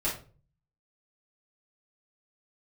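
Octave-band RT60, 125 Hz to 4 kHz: 0.75 s, 0.50 s, 0.45 s, 0.35 s, 0.30 s, 0.25 s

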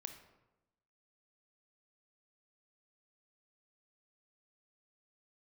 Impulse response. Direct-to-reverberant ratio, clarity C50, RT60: 6.5 dB, 8.5 dB, 1.0 s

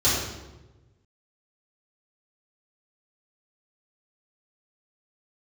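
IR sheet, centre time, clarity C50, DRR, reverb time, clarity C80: 75 ms, 0.0 dB, -13.0 dB, 1.1 s, 3.0 dB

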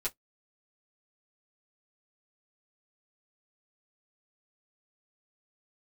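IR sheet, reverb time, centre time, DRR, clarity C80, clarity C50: no single decay rate, 10 ms, -7.0 dB, 48.5 dB, 31.0 dB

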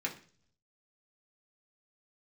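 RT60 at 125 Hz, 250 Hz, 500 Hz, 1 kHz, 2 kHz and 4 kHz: 1.0 s, 0.70 s, 0.50 s, 0.40 s, 0.45 s, 0.55 s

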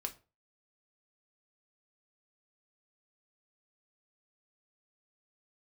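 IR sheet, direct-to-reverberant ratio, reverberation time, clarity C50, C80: 4.0 dB, 0.35 s, 16.5 dB, 23.0 dB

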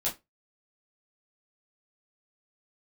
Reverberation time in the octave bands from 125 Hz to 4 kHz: 0.20 s, 0.20 s, 0.20 s, 0.20 s, 0.20 s, 0.15 s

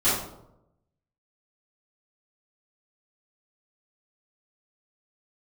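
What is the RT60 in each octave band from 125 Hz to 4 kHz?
1.1 s, 0.95 s, 0.90 s, 0.75 s, 0.50 s, 0.45 s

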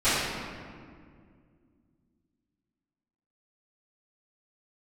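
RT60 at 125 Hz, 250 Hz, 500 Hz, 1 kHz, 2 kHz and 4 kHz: 3.1 s, 3.2 s, 2.3 s, 1.9 s, 1.7 s, 1.2 s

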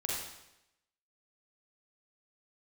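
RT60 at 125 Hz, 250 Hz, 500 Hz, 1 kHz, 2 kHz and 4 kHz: 0.85 s, 0.90 s, 0.90 s, 0.85 s, 0.85 s, 0.85 s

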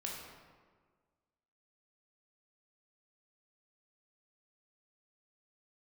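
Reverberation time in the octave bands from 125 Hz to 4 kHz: 1.6 s, 1.7 s, 1.6 s, 1.5 s, 1.2 s, 0.95 s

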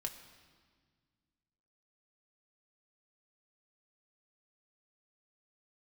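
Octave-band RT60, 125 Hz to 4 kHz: 2.6 s, 2.5 s, 1.7 s, 1.6 s, 1.5 s, 1.5 s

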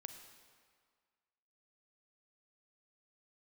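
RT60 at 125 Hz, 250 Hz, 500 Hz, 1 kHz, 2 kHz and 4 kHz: 1.6 s, 1.7 s, 1.7 s, 1.9 s, 1.7 s, 1.5 s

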